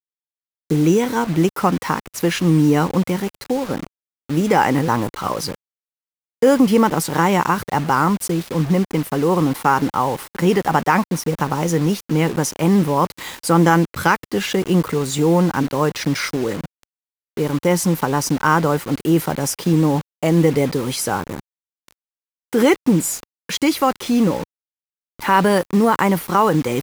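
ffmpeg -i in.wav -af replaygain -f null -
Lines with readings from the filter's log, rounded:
track_gain = -1.0 dB
track_peak = 0.566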